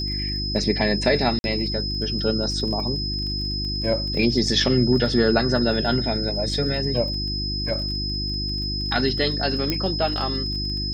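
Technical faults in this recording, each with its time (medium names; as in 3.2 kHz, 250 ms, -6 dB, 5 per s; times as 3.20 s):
crackle 24 per s -32 dBFS
hum 50 Hz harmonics 7 -29 dBFS
whine 5.1 kHz -27 dBFS
1.39–1.44 s: dropout 51 ms
9.70 s: pop -8 dBFS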